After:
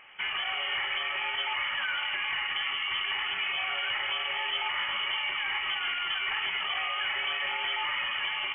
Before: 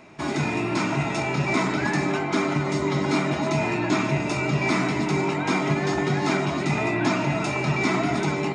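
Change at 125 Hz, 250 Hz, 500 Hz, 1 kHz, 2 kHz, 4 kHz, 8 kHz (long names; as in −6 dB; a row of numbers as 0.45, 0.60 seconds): below −35 dB, below −35 dB, −22.5 dB, −8.0 dB, −1.0 dB, +7.0 dB, below −40 dB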